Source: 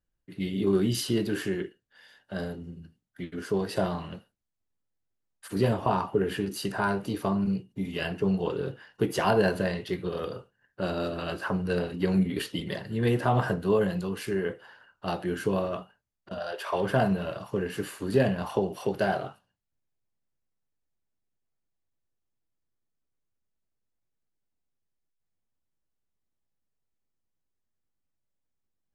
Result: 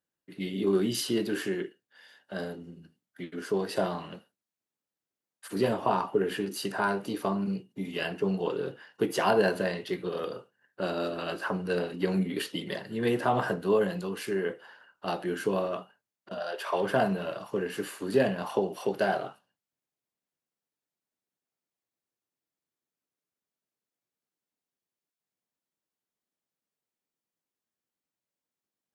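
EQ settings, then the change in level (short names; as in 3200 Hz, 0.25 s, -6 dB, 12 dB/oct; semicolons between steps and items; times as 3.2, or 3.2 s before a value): HPF 210 Hz 12 dB/oct; 0.0 dB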